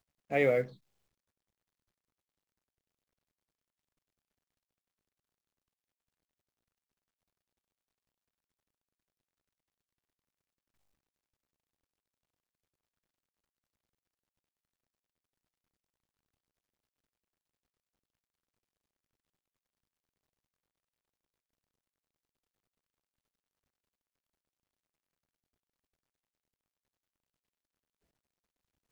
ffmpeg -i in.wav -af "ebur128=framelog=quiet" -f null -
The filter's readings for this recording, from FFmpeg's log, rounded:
Integrated loudness:
  I:         -29.7 LUFS
  Threshold: -40.9 LUFS
Loudness range:
  LRA:        14.9 LU
  Threshold: -58.0 LUFS
  LRA low:   -51.5 LUFS
  LRA high:  -36.6 LUFS